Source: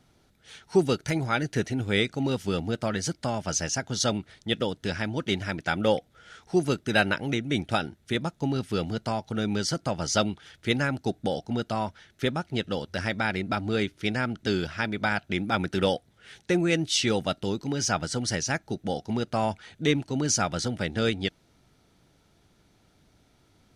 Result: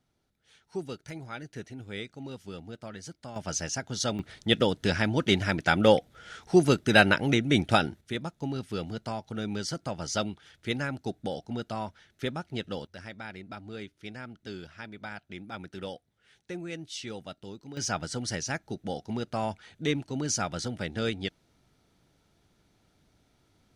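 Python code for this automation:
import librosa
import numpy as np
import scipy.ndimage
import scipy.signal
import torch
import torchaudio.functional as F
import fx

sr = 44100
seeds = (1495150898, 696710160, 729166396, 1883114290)

y = fx.gain(x, sr, db=fx.steps((0.0, -13.5), (3.36, -4.0), (4.19, 3.5), (8.01, -5.5), (12.87, -14.0), (17.77, -4.5)))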